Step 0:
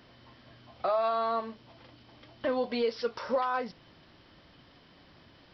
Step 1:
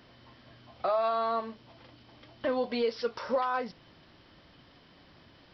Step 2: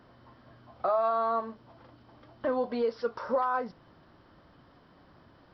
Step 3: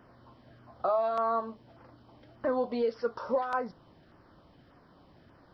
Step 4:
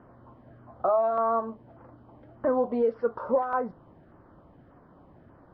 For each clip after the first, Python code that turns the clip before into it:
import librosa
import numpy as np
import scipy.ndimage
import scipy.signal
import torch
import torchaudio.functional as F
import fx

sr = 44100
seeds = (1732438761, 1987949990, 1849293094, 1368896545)

y1 = x
y2 = fx.high_shelf_res(y1, sr, hz=1800.0, db=-8.0, q=1.5)
y3 = fx.filter_lfo_notch(y2, sr, shape='saw_down', hz=1.7, low_hz=880.0, high_hz=4300.0, q=1.8)
y4 = scipy.signal.sosfilt(scipy.signal.butter(2, 1300.0, 'lowpass', fs=sr, output='sos'), y3)
y4 = y4 * 10.0 ** (4.5 / 20.0)